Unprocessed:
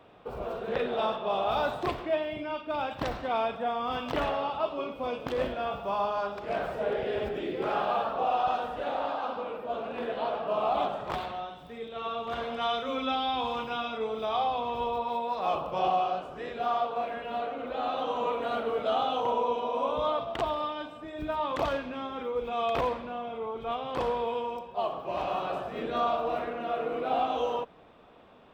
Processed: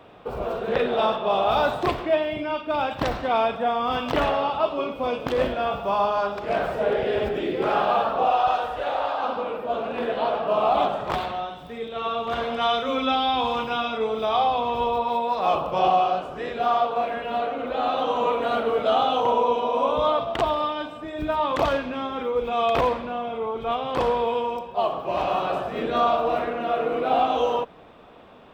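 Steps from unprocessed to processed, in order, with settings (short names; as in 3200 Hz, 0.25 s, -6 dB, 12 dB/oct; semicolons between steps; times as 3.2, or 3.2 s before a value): 8.3–9.18 bell 220 Hz -8 dB -> -14.5 dB 1.1 oct; gain +7 dB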